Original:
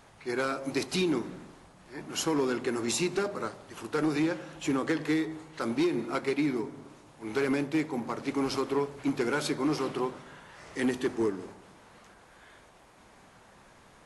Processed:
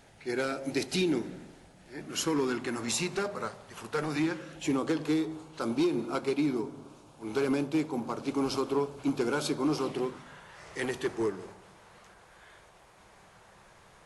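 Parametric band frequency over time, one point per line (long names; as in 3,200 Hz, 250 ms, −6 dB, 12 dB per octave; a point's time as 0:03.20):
parametric band −12 dB 0.37 octaves
0:01.94 1,100 Hz
0:02.97 310 Hz
0:04.04 310 Hz
0:04.84 1,900 Hz
0:09.84 1,900 Hz
0:10.39 260 Hz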